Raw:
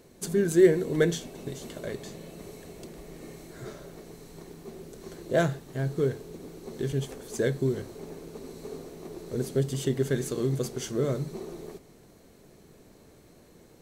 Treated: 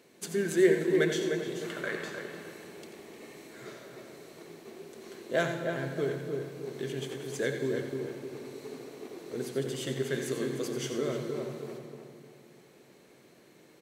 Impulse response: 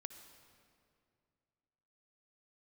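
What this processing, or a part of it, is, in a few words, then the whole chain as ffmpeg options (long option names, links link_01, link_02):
PA in a hall: -filter_complex "[0:a]asettb=1/sr,asplit=3[link_01][link_02][link_03];[link_01]atrim=end=1.644[link_04];[link_02]atrim=start=1.64:end=2.12,asetpts=PTS-STARTPTS,afade=type=in:duration=0.004:curve=qsin,afade=type=out:start_time=0.476:duration=0.004:curve=qsin,equalizer=frequency=1400:width_type=o:width=1:gain=14[link_05];[link_03]atrim=start=2.116[link_06];[link_04][link_05]acrossfade=duration=0.004:curve1=hsin:curve2=qsin[link_07];[link_07][link_06]acrossfade=duration=0.004:curve1=qsin:curve2=hsin,highpass=190,equalizer=frequency=2400:width_type=o:width=1.6:gain=7.5,aecho=1:1:89:0.335[link_08];[1:a]atrim=start_sample=2205[link_09];[link_08][link_09]afir=irnorm=-1:irlink=0,asplit=2[link_10][link_11];[link_11]adelay=305,lowpass=frequency=1600:poles=1,volume=-5dB,asplit=2[link_12][link_13];[link_13]adelay=305,lowpass=frequency=1600:poles=1,volume=0.37,asplit=2[link_14][link_15];[link_15]adelay=305,lowpass=frequency=1600:poles=1,volume=0.37,asplit=2[link_16][link_17];[link_17]adelay=305,lowpass=frequency=1600:poles=1,volume=0.37,asplit=2[link_18][link_19];[link_19]adelay=305,lowpass=frequency=1600:poles=1,volume=0.37[link_20];[link_10][link_12][link_14][link_16][link_18][link_20]amix=inputs=6:normalize=0"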